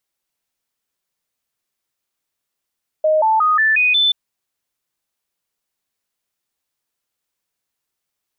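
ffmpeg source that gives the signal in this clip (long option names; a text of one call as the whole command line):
ffmpeg -f lavfi -i "aevalsrc='0.266*clip(min(mod(t,0.18),0.18-mod(t,0.18))/0.005,0,1)*sin(2*PI*622*pow(2,floor(t/0.18)/2)*mod(t,0.18))':duration=1.08:sample_rate=44100" out.wav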